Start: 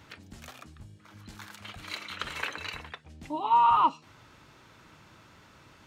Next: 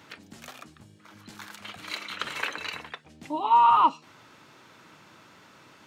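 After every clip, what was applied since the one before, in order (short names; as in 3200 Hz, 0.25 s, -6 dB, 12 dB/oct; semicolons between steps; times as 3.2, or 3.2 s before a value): HPF 170 Hz 12 dB/oct; gain +3 dB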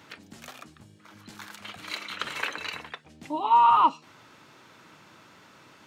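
nothing audible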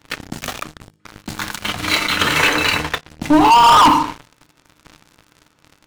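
FDN reverb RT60 0.62 s, low-frequency decay 1×, high-frequency decay 0.6×, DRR 6 dB; sample leveller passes 5; low shelf 160 Hz +10 dB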